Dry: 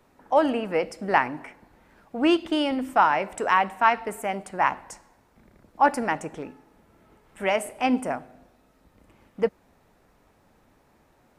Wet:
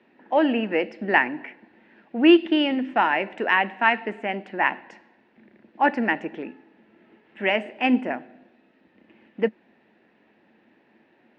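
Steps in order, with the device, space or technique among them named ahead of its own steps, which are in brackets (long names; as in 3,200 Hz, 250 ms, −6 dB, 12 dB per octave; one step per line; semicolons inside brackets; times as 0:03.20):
kitchen radio (loudspeaker in its box 210–3,900 Hz, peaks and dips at 220 Hz +10 dB, 340 Hz +8 dB, 1,200 Hz −8 dB, 1,800 Hz +9 dB, 2,700 Hz +8 dB)
level −1 dB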